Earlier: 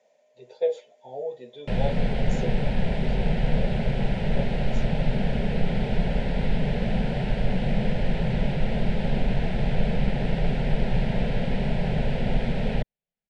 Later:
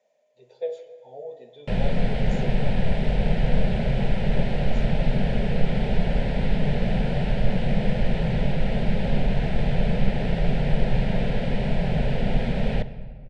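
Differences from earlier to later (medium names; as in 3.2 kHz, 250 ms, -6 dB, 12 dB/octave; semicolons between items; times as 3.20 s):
speech -7.0 dB; reverb: on, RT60 1.8 s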